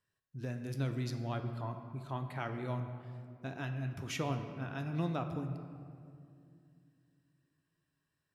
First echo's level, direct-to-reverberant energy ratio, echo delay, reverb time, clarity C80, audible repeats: no echo audible, 6.0 dB, no echo audible, 2.4 s, 9.0 dB, no echo audible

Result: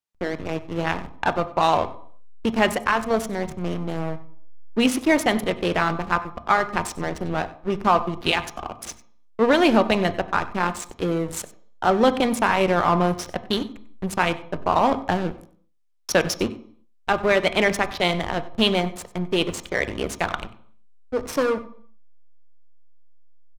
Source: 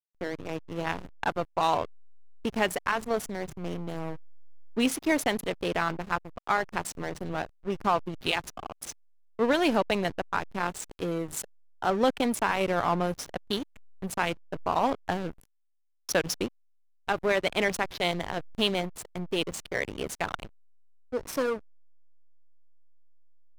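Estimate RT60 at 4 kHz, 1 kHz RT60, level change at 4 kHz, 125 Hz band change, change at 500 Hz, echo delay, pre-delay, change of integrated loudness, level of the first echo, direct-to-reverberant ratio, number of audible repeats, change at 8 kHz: 0.55 s, 0.55 s, +6.0 dB, +8.0 dB, +7.0 dB, 95 ms, 3 ms, +7.0 dB, −20.0 dB, 9.5 dB, 1, +3.5 dB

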